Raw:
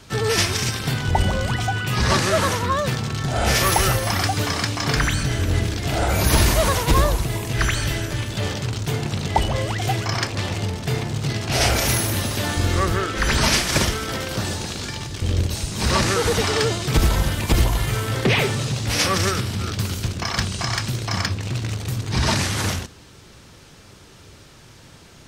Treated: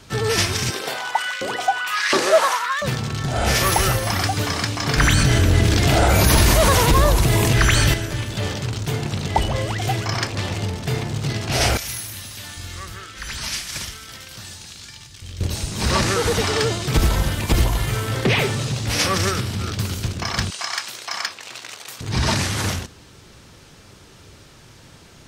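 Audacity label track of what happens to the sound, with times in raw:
0.700000	2.820000	LFO high-pass saw up 1.4 Hz 320–2200 Hz
4.980000	7.940000	level flattener amount 70%
11.770000	15.410000	amplifier tone stack bass-middle-treble 5-5-5
20.500000	22.010000	high-pass 790 Hz

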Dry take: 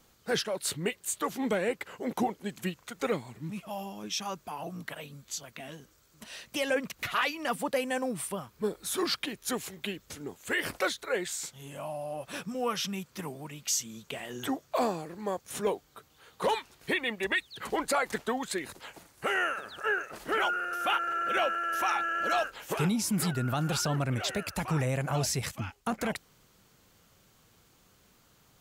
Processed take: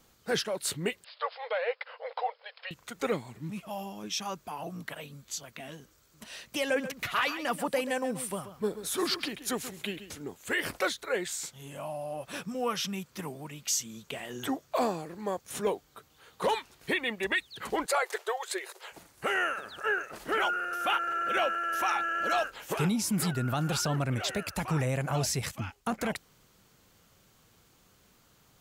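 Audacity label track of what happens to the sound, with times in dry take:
1.040000	2.710000	brick-wall FIR band-pass 450–5300 Hz
6.650000	10.190000	delay 134 ms -12 dB
17.860000	18.920000	brick-wall FIR high-pass 350 Hz

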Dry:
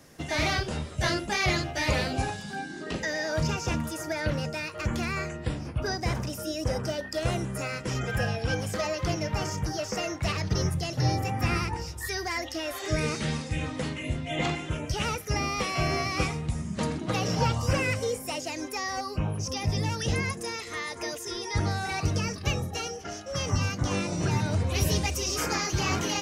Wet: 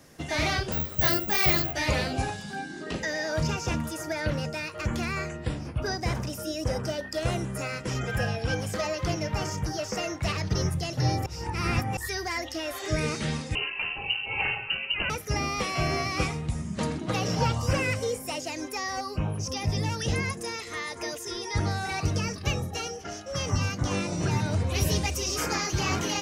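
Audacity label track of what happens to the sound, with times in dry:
0.720000	1.730000	careless resampling rate divided by 2×, down none, up zero stuff
11.260000	11.970000	reverse
13.550000	15.100000	frequency inversion carrier 2.9 kHz

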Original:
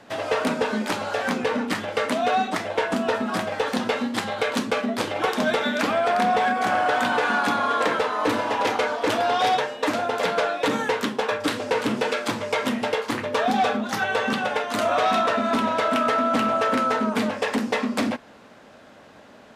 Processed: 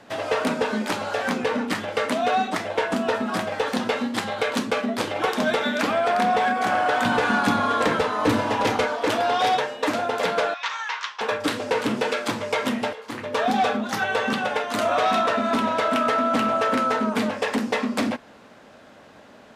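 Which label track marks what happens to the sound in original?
7.050000	8.860000	tone controls bass +11 dB, treble +2 dB
10.540000	11.210000	elliptic band-pass 1–6.1 kHz, stop band 80 dB
12.930000	13.430000	fade in, from -18 dB

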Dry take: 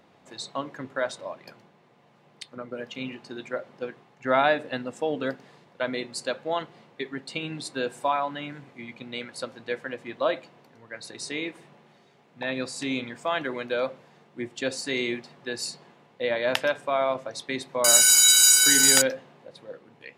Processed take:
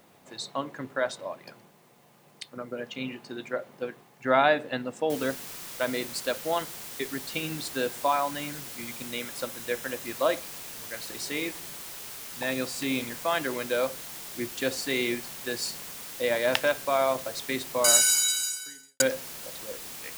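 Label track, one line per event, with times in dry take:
5.100000	5.100000	noise floor step -66 dB -41 dB
9.070000	10.050000	band-stop 4.5 kHz
17.780000	19.000000	fade out quadratic

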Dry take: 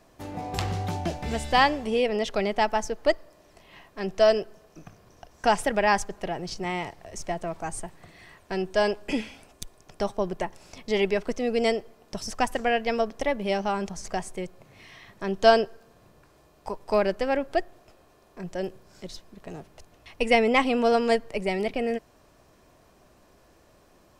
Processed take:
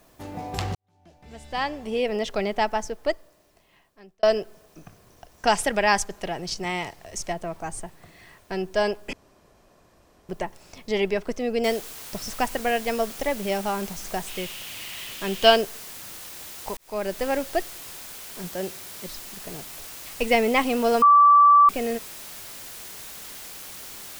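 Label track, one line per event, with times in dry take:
0.750000	2.090000	fade in quadratic
2.670000	4.230000	fade out
5.470000	7.330000	treble shelf 2.3 kHz +7.5 dB
9.130000	10.290000	room tone
11.640000	11.640000	noise floor step -63 dB -40 dB
14.270000	15.560000	peaking EQ 2.9 kHz +12.5 dB 0.68 oct
16.770000	17.230000	fade in
18.470000	19.070000	high-pass 59 Hz
21.020000	21.690000	bleep 1.16 kHz -10.5 dBFS

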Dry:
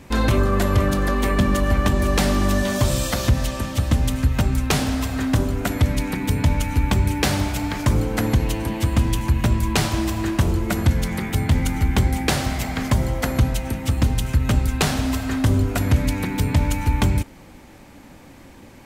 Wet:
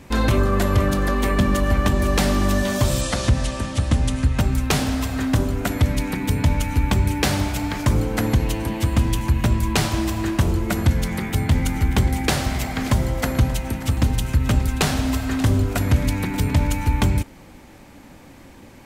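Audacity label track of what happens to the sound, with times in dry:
3.010000	4.390000	steep low-pass 11 kHz 96 dB/octave
11.150000	16.670000	delay 582 ms -15.5 dB

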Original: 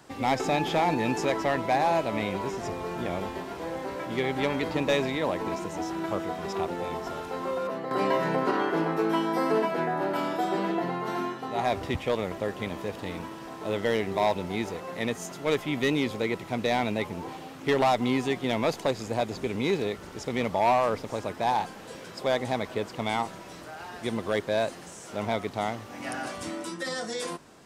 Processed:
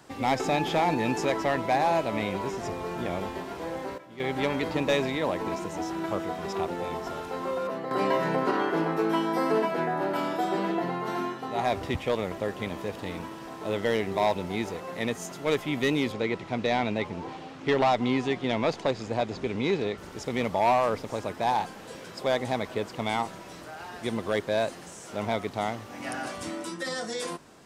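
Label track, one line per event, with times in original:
3.650000	4.530000	dip -14.5 dB, fades 0.33 s logarithmic
16.120000	19.980000	low-pass 5.7 kHz

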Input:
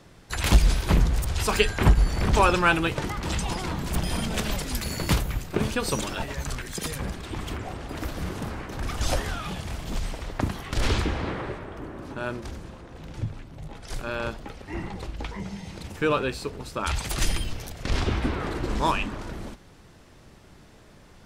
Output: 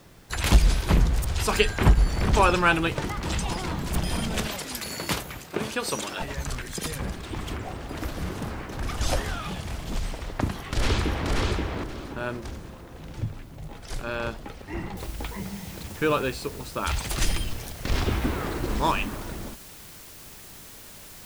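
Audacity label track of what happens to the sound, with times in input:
4.470000	6.210000	high-pass 340 Hz 6 dB/octave
10.500000	11.300000	echo throw 530 ms, feedback 20%, level -2.5 dB
14.970000	14.970000	noise floor step -63 dB -46 dB

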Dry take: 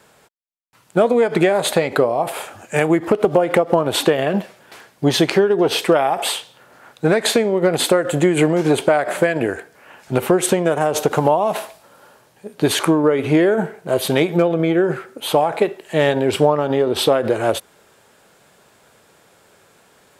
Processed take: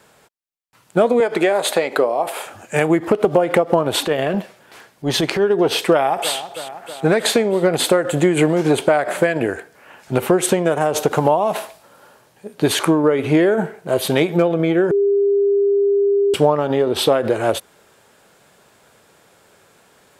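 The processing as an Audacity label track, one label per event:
1.200000	2.460000	high-pass 300 Hz
4.000000	5.420000	transient shaper attack -9 dB, sustain -1 dB
5.920000	6.360000	echo throw 320 ms, feedback 70%, level -12.5 dB
14.910000	16.340000	bleep 401 Hz -12.5 dBFS

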